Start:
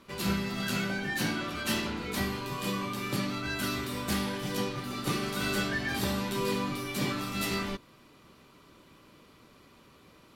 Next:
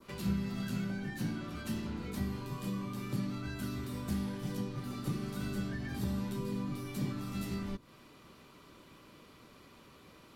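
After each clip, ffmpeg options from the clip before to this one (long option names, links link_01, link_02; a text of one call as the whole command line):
ffmpeg -i in.wav -filter_complex "[0:a]adynamicequalizer=threshold=0.00447:dfrequency=2800:dqfactor=0.82:tfrequency=2800:tqfactor=0.82:attack=5:release=100:ratio=0.375:range=2:mode=cutabove:tftype=bell,acrossover=split=250[link_01][link_02];[link_02]acompressor=threshold=-45dB:ratio=6[link_03];[link_01][link_03]amix=inputs=2:normalize=0" out.wav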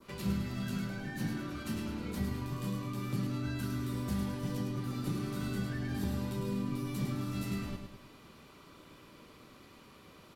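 ffmpeg -i in.wav -af "aecho=1:1:105|210|315|420|525|630:0.501|0.231|0.106|0.0488|0.0224|0.0103" out.wav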